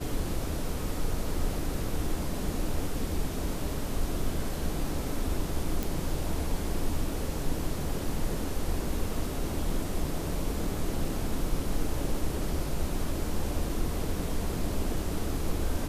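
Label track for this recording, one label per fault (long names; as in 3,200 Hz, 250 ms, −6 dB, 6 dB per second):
5.830000	5.830000	click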